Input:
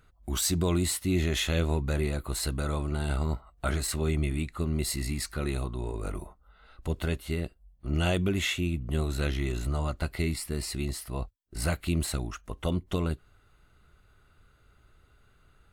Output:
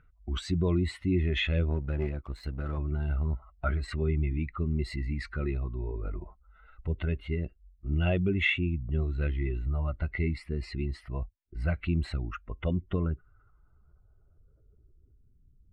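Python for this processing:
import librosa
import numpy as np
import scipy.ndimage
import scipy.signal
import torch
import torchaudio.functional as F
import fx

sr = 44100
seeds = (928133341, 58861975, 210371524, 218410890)

y = fx.spec_expand(x, sr, power=1.6)
y = fx.filter_sweep_lowpass(y, sr, from_hz=2300.0, to_hz=240.0, start_s=12.69, end_s=15.46, q=2.1)
y = fx.power_curve(y, sr, exponent=1.4, at=(1.7, 2.78))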